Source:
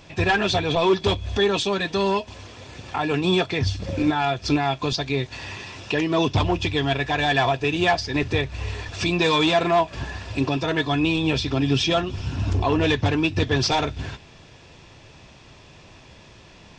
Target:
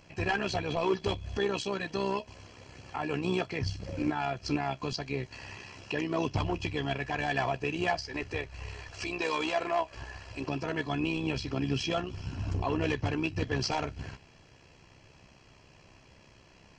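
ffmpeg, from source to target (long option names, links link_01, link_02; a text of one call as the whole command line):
ffmpeg -i in.wav -filter_complex "[0:a]asettb=1/sr,asplit=3[link_01][link_02][link_03];[link_01]atrim=end=8.014[link_04];[link_02]atrim=start=8.01:end=10.48,asetpts=PTS-STARTPTS,afade=type=in:duration=0.004:curve=qsin,afade=type=out:start_time=2.466:duration=0.004:curve=qsin,equalizer=frequency=170:width=1.3:gain=-13.5[link_05];[link_03]atrim=start=10.476[link_06];[link_04][link_05]acrossfade=duration=0.004:curve1=hsin:curve2=qsin[link_07];[link_07][link_06]acrossfade=duration=0.004:curve1=qsin:curve2=hsin,tremolo=f=65:d=0.571,asuperstop=centerf=3600:order=8:qfactor=7.3,volume=-7dB" out.wav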